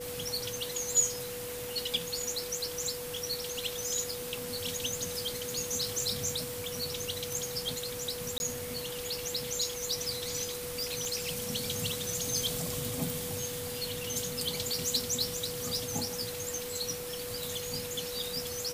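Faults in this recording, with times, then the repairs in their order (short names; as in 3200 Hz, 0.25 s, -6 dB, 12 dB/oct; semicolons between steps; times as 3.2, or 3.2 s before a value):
tone 490 Hz -39 dBFS
8.38–8.4 gap 21 ms
11.05 pop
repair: de-click; notch 490 Hz, Q 30; interpolate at 8.38, 21 ms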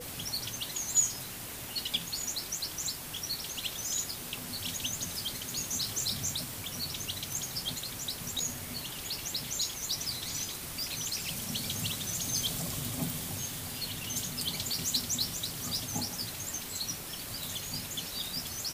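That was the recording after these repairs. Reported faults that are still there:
none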